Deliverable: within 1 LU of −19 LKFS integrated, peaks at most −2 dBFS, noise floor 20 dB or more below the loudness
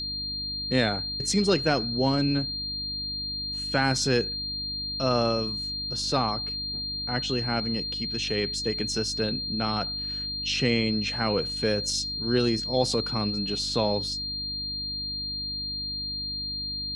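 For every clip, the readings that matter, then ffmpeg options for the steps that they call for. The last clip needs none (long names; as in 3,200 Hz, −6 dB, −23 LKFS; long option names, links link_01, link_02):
mains hum 50 Hz; hum harmonics up to 300 Hz; level of the hum −40 dBFS; interfering tone 4,200 Hz; level of the tone −30 dBFS; integrated loudness −26.5 LKFS; sample peak −9.0 dBFS; target loudness −19.0 LKFS
→ -af "bandreject=frequency=50:width_type=h:width=4,bandreject=frequency=100:width_type=h:width=4,bandreject=frequency=150:width_type=h:width=4,bandreject=frequency=200:width_type=h:width=4,bandreject=frequency=250:width_type=h:width=4,bandreject=frequency=300:width_type=h:width=4"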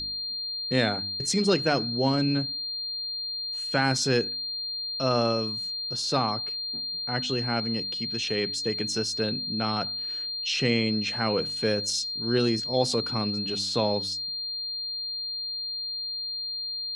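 mains hum none found; interfering tone 4,200 Hz; level of the tone −30 dBFS
→ -af "bandreject=frequency=4200:width=30"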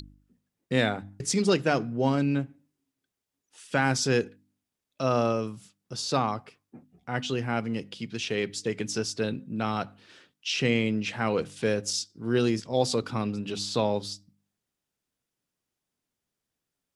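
interfering tone none found; integrated loudness −28.0 LKFS; sample peak −10.0 dBFS; target loudness −19.0 LKFS
→ -af "volume=9dB,alimiter=limit=-2dB:level=0:latency=1"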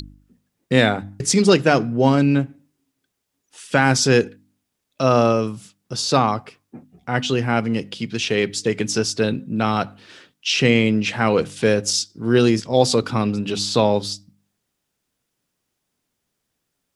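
integrated loudness −19.5 LKFS; sample peak −2.0 dBFS; background noise floor −77 dBFS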